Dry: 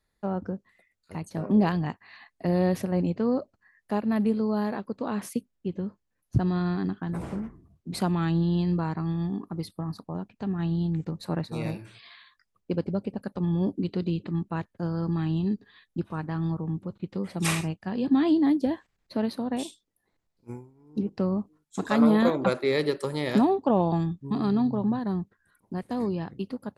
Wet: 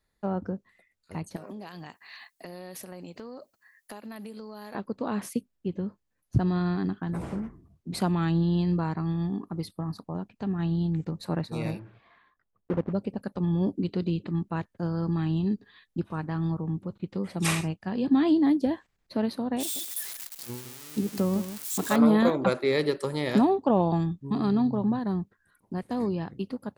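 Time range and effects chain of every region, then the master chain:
1.36–4.75 s: RIAA curve recording + compression 10:1, threshold -37 dBFS
11.79–12.93 s: block-companded coder 3-bit + low-pass 1.1 kHz
19.60–21.96 s: zero-crossing glitches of -26 dBFS + delay 160 ms -11.5 dB
whole clip: none

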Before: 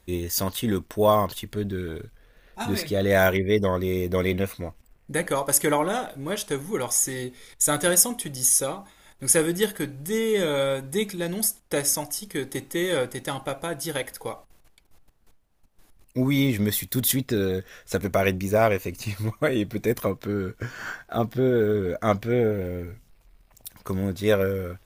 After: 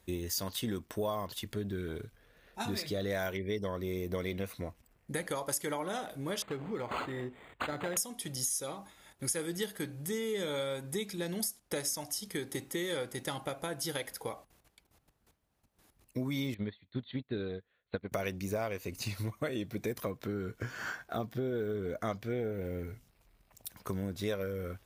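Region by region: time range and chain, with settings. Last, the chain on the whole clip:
6.42–7.97 s: compression 1.5:1, threshold -30 dBFS + decimation joined by straight lines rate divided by 8×
16.54–18.12 s: brick-wall FIR low-pass 4.5 kHz + upward expansion 2.5:1, over -37 dBFS
whole clip: high-pass 56 Hz; dynamic bell 4.7 kHz, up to +6 dB, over -44 dBFS, Q 1.5; compression 4:1, threshold -29 dBFS; trim -4 dB

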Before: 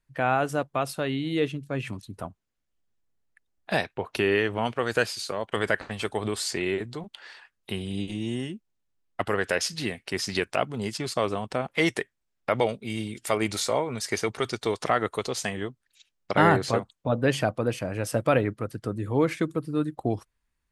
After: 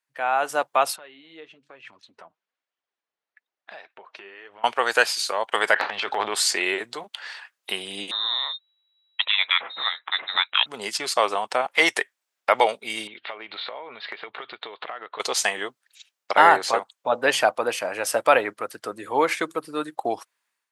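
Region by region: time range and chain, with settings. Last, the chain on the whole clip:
0.96–4.64 s: compression 4:1, threshold -42 dBFS + flange 1.1 Hz, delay 0.5 ms, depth 6.2 ms, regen +45% + distance through air 160 m
5.74–6.35 s: low-pass 4.3 kHz 24 dB/octave + band-stop 1.1 kHz, Q 26 + transient shaper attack -6 dB, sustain +10 dB
8.11–10.66 s: frequency inversion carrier 3.9 kHz + distance through air 200 m
13.07–15.20 s: steep low-pass 4 kHz 72 dB/octave + compression 16:1, threshold -36 dBFS
whole clip: high-pass 680 Hz 12 dB/octave; level rider gain up to 10 dB; dynamic bell 860 Hz, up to +5 dB, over -36 dBFS, Q 3.3; trim -1 dB

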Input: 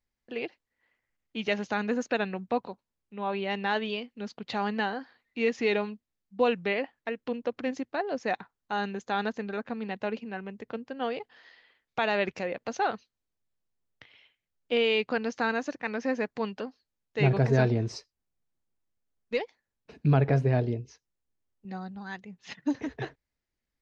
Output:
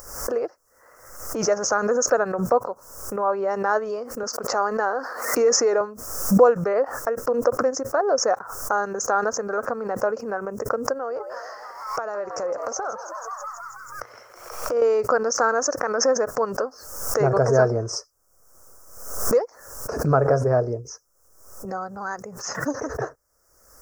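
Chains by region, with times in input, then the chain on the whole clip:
4.23–5.81 s: high-pass 240 Hz + decay stretcher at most 70 dB/s
10.94–14.82 s: compression 2.5:1, threshold -47 dBFS + frequency-shifting echo 161 ms, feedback 64%, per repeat +120 Hz, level -13.5 dB
whole clip: upward compressor, threshold -27 dBFS; FFT filter 120 Hz 0 dB, 190 Hz -8 dB, 340 Hz +1 dB, 540 Hz +13 dB, 850 Hz +5 dB, 1.3 kHz +15 dB, 2.3 kHz -16 dB, 3.6 kHz -28 dB, 5.4 kHz +13 dB; swell ahead of each attack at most 65 dB/s

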